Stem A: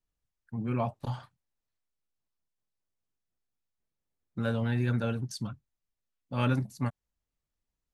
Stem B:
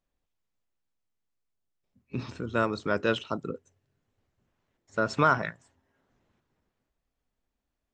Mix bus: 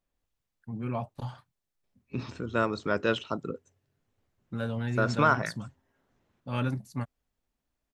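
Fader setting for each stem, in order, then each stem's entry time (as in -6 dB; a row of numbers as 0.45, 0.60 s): -2.5, -0.5 dB; 0.15, 0.00 s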